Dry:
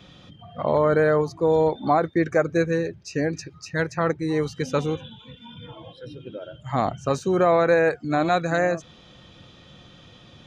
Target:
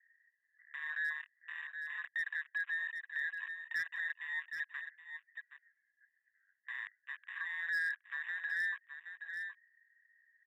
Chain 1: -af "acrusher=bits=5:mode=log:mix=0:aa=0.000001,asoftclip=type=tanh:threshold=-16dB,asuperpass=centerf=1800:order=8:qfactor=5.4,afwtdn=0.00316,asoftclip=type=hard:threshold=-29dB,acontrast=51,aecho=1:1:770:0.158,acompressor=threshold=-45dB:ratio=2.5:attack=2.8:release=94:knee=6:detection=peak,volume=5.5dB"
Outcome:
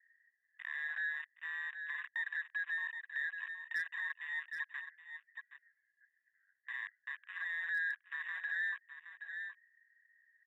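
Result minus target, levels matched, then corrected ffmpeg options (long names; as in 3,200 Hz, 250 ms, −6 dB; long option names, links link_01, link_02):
soft clipping: distortion +10 dB
-af "acrusher=bits=5:mode=log:mix=0:aa=0.000001,asoftclip=type=tanh:threshold=-9dB,asuperpass=centerf=1800:order=8:qfactor=5.4,afwtdn=0.00316,asoftclip=type=hard:threshold=-29dB,acontrast=51,aecho=1:1:770:0.158,acompressor=threshold=-45dB:ratio=2.5:attack=2.8:release=94:knee=6:detection=peak,volume=5.5dB"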